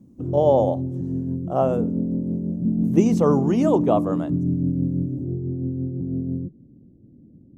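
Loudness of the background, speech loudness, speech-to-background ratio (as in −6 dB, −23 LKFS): −25.5 LKFS, −22.0 LKFS, 3.5 dB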